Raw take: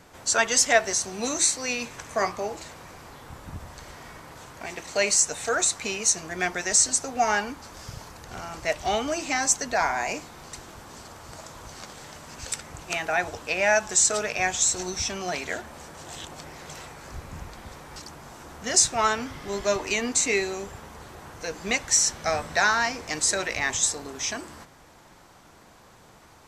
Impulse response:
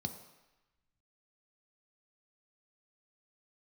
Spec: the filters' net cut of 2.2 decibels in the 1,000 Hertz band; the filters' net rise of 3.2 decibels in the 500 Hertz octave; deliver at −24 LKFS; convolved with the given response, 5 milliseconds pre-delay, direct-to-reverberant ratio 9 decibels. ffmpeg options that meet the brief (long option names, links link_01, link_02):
-filter_complex "[0:a]equalizer=frequency=500:width_type=o:gain=7,equalizer=frequency=1000:width_type=o:gain=-7,asplit=2[link_01][link_02];[1:a]atrim=start_sample=2205,adelay=5[link_03];[link_02][link_03]afir=irnorm=-1:irlink=0,volume=-8.5dB[link_04];[link_01][link_04]amix=inputs=2:normalize=0"